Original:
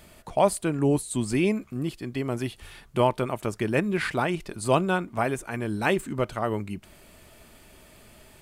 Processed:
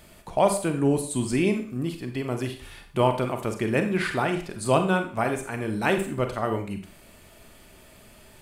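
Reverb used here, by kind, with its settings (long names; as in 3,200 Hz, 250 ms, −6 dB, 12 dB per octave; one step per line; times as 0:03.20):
four-comb reverb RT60 0.45 s, combs from 32 ms, DRR 6 dB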